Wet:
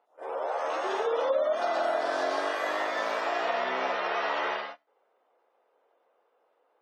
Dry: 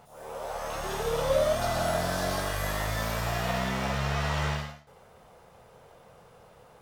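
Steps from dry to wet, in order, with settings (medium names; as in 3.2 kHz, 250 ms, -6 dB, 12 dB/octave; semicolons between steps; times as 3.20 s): spectral gate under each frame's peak -30 dB strong; elliptic high-pass 300 Hz, stop band 70 dB; gate -45 dBFS, range -20 dB; treble shelf 5.3 kHz -9.5 dB; compression 3:1, threshold -31 dBFS, peak gain reduction 8 dB; distance through air 72 m; trim +6 dB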